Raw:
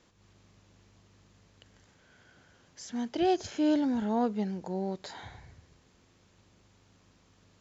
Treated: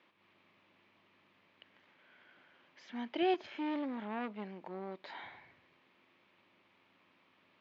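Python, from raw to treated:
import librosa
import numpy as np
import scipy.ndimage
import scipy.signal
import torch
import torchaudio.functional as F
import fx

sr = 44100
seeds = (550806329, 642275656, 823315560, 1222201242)

y = fx.tube_stage(x, sr, drive_db=28.0, bias=0.55, at=(3.34, 5.08))
y = fx.cabinet(y, sr, low_hz=380.0, low_slope=12, high_hz=3200.0, hz=(460.0, 740.0, 1500.0, 2300.0), db=(-9, -5, -4, 4))
y = y * 10.0 ** (1.0 / 20.0)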